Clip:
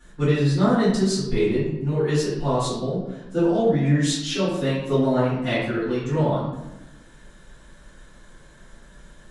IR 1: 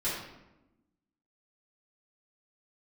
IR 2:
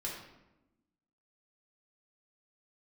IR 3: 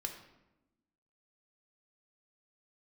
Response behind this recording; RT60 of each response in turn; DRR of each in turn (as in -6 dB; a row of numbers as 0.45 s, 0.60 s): 1; 1.0 s, 1.0 s, 1.0 s; -11.5 dB, -4.5 dB, 3.0 dB